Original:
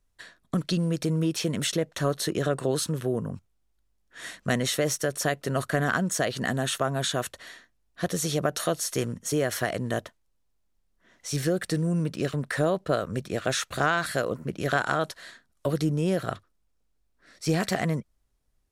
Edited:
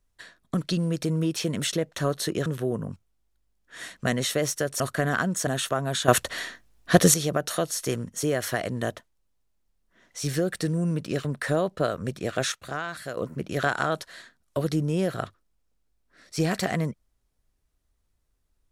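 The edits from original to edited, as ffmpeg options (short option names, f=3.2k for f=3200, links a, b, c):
-filter_complex "[0:a]asplit=8[a][b][c][d][e][f][g][h];[a]atrim=end=2.462[i];[b]atrim=start=2.888:end=5.232[j];[c]atrim=start=5.548:end=6.222[k];[d]atrim=start=6.558:end=7.172[l];[e]atrim=start=7.168:end=8.232,asetpts=PTS-STARTPTS,volume=11.5dB[m];[f]atrim=start=8.228:end=13.612[n];[g]atrim=start=13.608:end=14.262,asetpts=PTS-STARTPTS,volume=-8dB[o];[h]atrim=start=14.258[p];[i][j]acrossfade=d=0.004:c1=hsin:c2=hsin[q];[q][k]acrossfade=d=0.004:c1=hsin:c2=hsin[r];[r][l]acrossfade=d=0.004:c1=hsin:c2=hsin[s];[s][m]acrossfade=d=0.004:c1=hsin:c2=hsin[t];[t][n]acrossfade=d=0.004:c1=hsin:c2=hsin[u];[u][o]acrossfade=d=0.004:c1=hsin:c2=hsin[v];[v][p]acrossfade=d=0.004:c1=hsin:c2=hsin"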